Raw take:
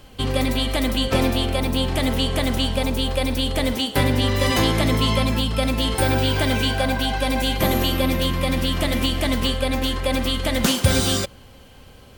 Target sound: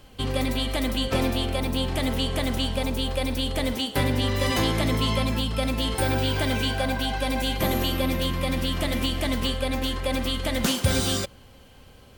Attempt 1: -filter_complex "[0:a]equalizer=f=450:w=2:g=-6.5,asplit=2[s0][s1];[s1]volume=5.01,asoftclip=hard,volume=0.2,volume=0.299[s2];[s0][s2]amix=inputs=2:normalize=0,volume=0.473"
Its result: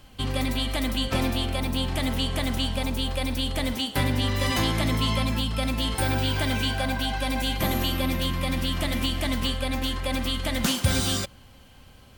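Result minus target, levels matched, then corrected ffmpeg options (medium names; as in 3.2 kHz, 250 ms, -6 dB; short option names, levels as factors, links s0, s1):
500 Hz band -3.5 dB
-filter_complex "[0:a]asplit=2[s0][s1];[s1]volume=5.01,asoftclip=hard,volume=0.2,volume=0.299[s2];[s0][s2]amix=inputs=2:normalize=0,volume=0.473"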